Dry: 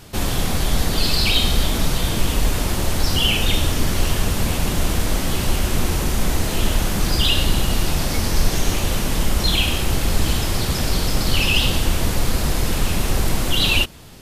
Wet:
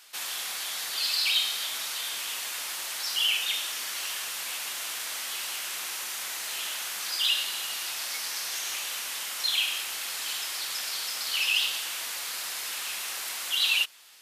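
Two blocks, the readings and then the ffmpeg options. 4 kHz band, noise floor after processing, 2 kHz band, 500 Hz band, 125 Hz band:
−5.0 dB, −35 dBFS, −6.0 dB, −23.5 dB, below −40 dB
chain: -af "highpass=1500,volume=-5dB"

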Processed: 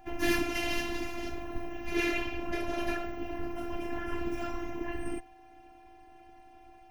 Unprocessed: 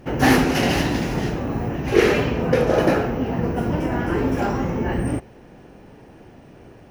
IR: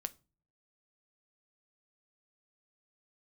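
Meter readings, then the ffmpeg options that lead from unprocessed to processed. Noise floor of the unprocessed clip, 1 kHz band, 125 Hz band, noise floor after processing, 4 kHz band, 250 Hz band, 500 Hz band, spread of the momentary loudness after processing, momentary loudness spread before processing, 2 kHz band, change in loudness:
−46 dBFS, −14.0 dB, −22.5 dB, −55 dBFS, −10.0 dB, −14.0 dB, −15.5 dB, 9 LU, 8 LU, −10.0 dB, −13.5 dB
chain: -filter_complex "[0:a]afftfilt=real='hypot(re,im)*cos(2*PI*random(0))':imag='hypot(re,im)*sin(2*PI*random(1))':win_size=512:overlap=0.75,equalizer=frequency=100:width_type=o:width=0.67:gain=11,equalizer=frequency=400:width_type=o:width=0.67:gain=-5,equalizer=frequency=2500:width_type=o:width=0.67:gain=5,equalizer=frequency=16000:width_type=o:width=0.67:gain=4,afftfilt=real='hypot(re,im)*cos(PI*b)':imag='0':win_size=512:overlap=0.75,acrossover=split=410|1600[link_01][link_02][link_03];[link_02]asoftclip=type=tanh:threshold=-34dB[link_04];[link_01][link_04][link_03]amix=inputs=3:normalize=0,aeval=exprs='val(0)+0.00224*sin(2*PI*760*n/s)':channel_layout=same,volume=-2dB"

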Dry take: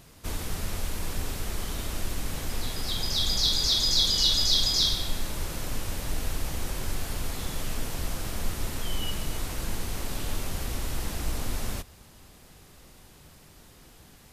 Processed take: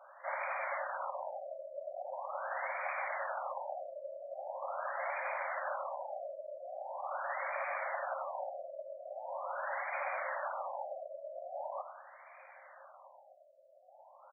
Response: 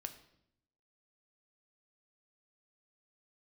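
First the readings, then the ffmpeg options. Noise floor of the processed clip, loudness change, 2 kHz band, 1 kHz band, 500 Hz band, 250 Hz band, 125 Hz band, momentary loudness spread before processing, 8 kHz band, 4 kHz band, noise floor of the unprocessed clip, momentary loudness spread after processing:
−60 dBFS, −11.5 dB, +0.5 dB, +4.5 dB, +2.0 dB, below −40 dB, below −40 dB, 13 LU, below −40 dB, below −40 dB, −53 dBFS, 12 LU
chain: -filter_complex "[0:a]afftfilt=real='hypot(re,im)*cos(2*PI*random(0))':imag='hypot(re,im)*sin(2*PI*random(1))':win_size=512:overlap=0.75,afftfilt=real='re*between(b*sr/4096,520,5600)':imag='im*between(b*sr/4096,520,5600)':win_size=4096:overlap=0.75,asplit=2[link_01][link_02];[link_02]asplit=6[link_03][link_04][link_05][link_06][link_07][link_08];[link_03]adelay=97,afreqshift=37,volume=-11dB[link_09];[link_04]adelay=194,afreqshift=74,volume=-16dB[link_10];[link_05]adelay=291,afreqshift=111,volume=-21.1dB[link_11];[link_06]adelay=388,afreqshift=148,volume=-26.1dB[link_12];[link_07]adelay=485,afreqshift=185,volume=-31.1dB[link_13];[link_08]adelay=582,afreqshift=222,volume=-36.2dB[link_14];[link_09][link_10][link_11][link_12][link_13][link_14]amix=inputs=6:normalize=0[link_15];[link_01][link_15]amix=inputs=2:normalize=0,afftfilt=real='re*lt(b*sr/1024,660*pow(2500/660,0.5+0.5*sin(2*PI*0.42*pts/sr)))':imag='im*lt(b*sr/1024,660*pow(2500/660,0.5+0.5*sin(2*PI*0.42*pts/sr)))':win_size=1024:overlap=0.75,volume=12dB"

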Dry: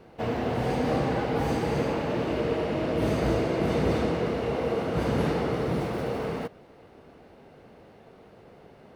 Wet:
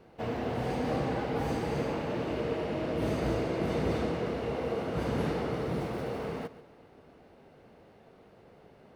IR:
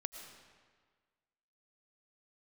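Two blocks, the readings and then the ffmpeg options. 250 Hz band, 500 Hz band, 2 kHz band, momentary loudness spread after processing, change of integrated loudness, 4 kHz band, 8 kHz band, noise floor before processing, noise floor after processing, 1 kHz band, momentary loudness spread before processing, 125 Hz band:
−5.0 dB, −5.0 dB, −5.0 dB, 5 LU, −5.0 dB, −5.0 dB, −5.0 dB, −53 dBFS, −57 dBFS, −5.0 dB, 5 LU, −5.0 dB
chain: -filter_complex "[0:a]asplit=2[link_01][link_02];[1:a]atrim=start_sample=2205,adelay=136[link_03];[link_02][link_03]afir=irnorm=-1:irlink=0,volume=-14.5dB[link_04];[link_01][link_04]amix=inputs=2:normalize=0,volume=-5dB"

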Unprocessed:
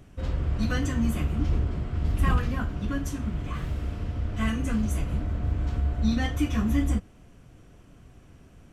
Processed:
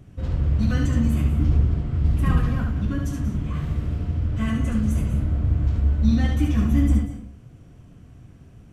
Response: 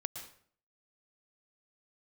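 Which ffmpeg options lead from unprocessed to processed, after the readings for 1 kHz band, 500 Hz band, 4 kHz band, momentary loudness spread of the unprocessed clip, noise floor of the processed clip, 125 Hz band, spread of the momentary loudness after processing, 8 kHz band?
−1.0 dB, +1.0 dB, −1.5 dB, 7 LU, −47 dBFS, +7.0 dB, 7 LU, −1.5 dB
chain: -filter_complex "[0:a]equalizer=frequency=120:width=0.48:gain=9,asplit=2[link_01][link_02];[1:a]atrim=start_sample=2205,adelay=71[link_03];[link_02][link_03]afir=irnorm=-1:irlink=0,volume=-3dB[link_04];[link_01][link_04]amix=inputs=2:normalize=0,volume=-3dB"

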